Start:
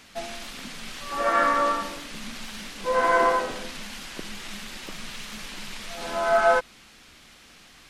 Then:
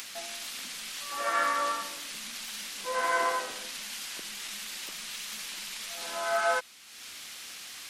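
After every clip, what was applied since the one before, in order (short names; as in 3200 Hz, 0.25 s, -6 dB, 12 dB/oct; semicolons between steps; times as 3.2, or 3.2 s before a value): upward compressor, threshold -32 dBFS; tilt +3.5 dB/oct; gain -7 dB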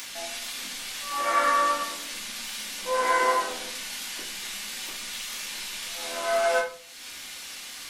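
reverb RT60 0.45 s, pre-delay 3 ms, DRR -2.5 dB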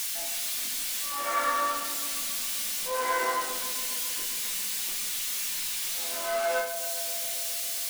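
switching spikes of -22 dBFS; darkening echo 0.136 s, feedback 83%, low-pass 2000 Hz, level -12 dB; gain -5 dB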